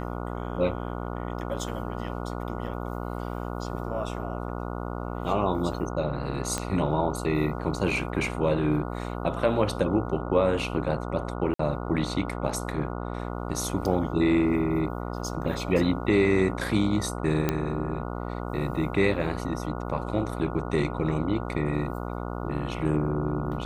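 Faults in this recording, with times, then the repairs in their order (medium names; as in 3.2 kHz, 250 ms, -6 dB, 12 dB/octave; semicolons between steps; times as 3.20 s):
buzz 60 Hz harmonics 24 -33 dBFS
6.58 s: pop -14 dBFS
11.54–11.59 s: dropout 54 ms
17.49 s: pop -10 dBFS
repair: de-click; de-hum 60 Hz, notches 24; interpolate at 11.54 s, 54 ms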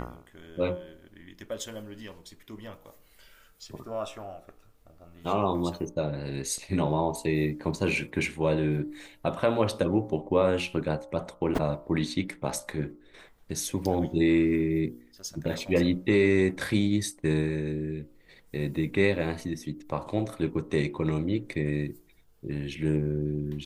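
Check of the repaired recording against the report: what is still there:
6.58 s: pop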